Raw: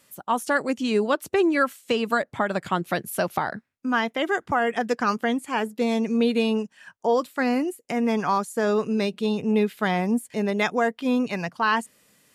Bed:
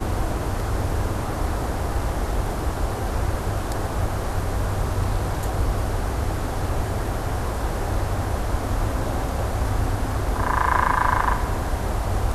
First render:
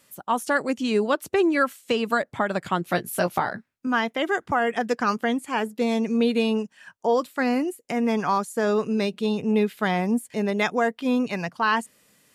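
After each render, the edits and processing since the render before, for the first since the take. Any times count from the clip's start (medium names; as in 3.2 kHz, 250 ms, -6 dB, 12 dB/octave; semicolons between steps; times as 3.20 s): 2.90–3.87 s: doubling 17 ms -6 dB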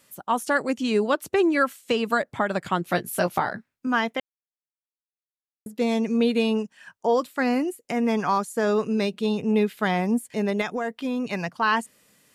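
4.20–5.66 s: mute; 10.61–11.33 s: compression, threshold -23 dBFS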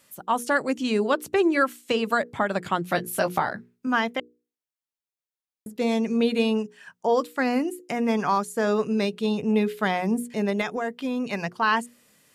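hum notches 60/120/180/240/300/360/420/480 Hz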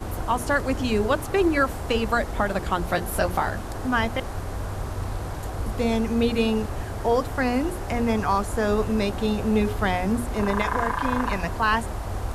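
add bed -6.5 dB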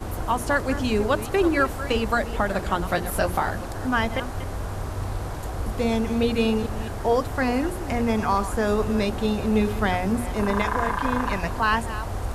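chunks repeated in reverse 215 ms, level -12.5 dB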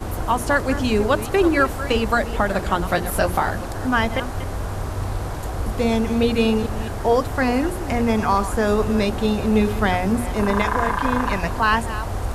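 trim +3.5 dB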